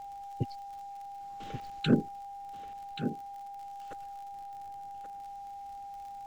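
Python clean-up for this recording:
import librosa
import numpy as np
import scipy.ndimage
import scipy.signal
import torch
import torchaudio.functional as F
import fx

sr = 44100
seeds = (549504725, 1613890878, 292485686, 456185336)

y = fx.fix_declip(x, sr, threshold_db=-13.0)
y = fx.fix_declick_ar(y, sr, threshold=6.5)
y = fx.notch(y, sr, hz=800.0, q=30.0)
y = fx.fix_echo_inverse(y, sr, delay_ms=1131, level_db=-9.0)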